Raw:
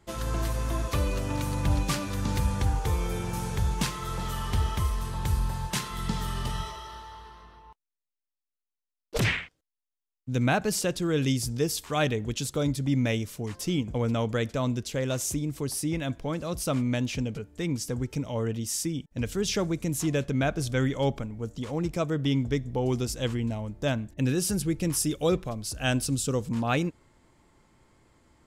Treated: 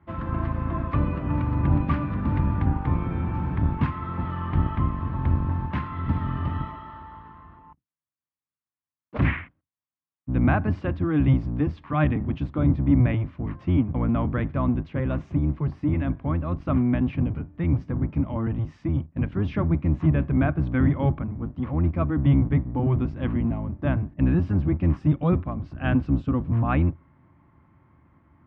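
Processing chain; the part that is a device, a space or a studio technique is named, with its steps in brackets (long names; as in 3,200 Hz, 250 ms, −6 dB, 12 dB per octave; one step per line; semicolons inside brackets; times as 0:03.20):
sub-octave bass pedal (sub-octave generator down 1 octave, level +4 dB; loudspeaker in its box 70–2,200 Hz, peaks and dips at 82 Hz +6 dB, 150 Hz +5 dB, 280 Hz +6 dB, 450 Hz −10 dB, 1,100 Hz +6 dB)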